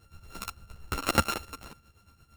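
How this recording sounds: a buzz of ramps at a fixed pitch in blocks of 32 samples; tremolo triangle 8.7 Hz, depth 75%; a shimmering, thickened sound

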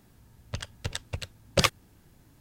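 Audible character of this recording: noise floor -60 dBFS; spectral tilt -3.0 dB/oct

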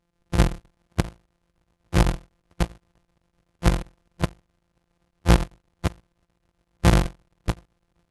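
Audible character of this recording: a buzz of ramps at a fixed pitch in blocks of 256 samples; chopped level 7.8 Hz, depth 60%, duty 80%; AAC

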